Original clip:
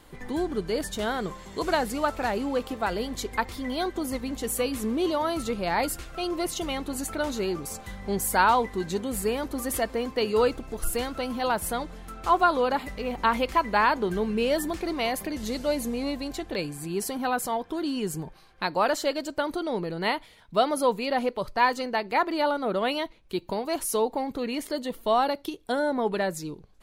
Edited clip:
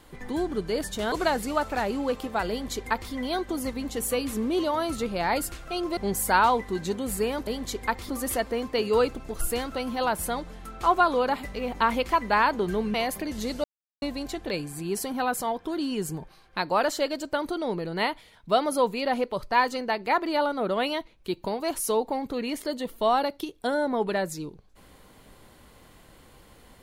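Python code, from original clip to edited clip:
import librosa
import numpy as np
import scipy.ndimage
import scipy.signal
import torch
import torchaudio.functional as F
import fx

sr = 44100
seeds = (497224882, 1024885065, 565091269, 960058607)

y = fx.edit(x, sr, fx.cut(start_s=1.12, length_s=0.47),
    fx.duplicate(start_s=2.97, length_s=0.62, to_s=9.52),
    fx.cut(start_s=6.44, length_s=1.58),
    fx.cut(start_s=14.37, length_s=0.62),
    fx.silence(start_s=15.69, length_s=0.38), tone=tone)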